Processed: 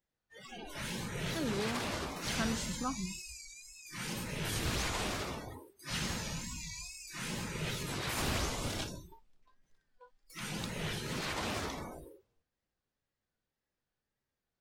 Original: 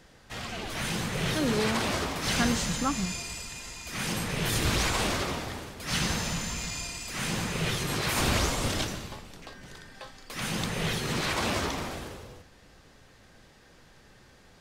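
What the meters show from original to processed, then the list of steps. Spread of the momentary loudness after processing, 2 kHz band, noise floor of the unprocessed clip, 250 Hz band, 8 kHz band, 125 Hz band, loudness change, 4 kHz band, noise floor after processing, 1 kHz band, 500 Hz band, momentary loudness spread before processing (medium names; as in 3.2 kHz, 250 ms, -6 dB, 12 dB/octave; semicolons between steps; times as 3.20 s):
14 LU, -8.5 dB, -56 dBFS, -8.0 dB, -8.0 dB, -8.0 dB, -8.0 dB, -8.5 dB, under -85 dBFS, -8.5 dB, -8.0 dB, 17 LU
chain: wow and flutter 110 cents; spectral noise reduction 26 dB; trim -8 dB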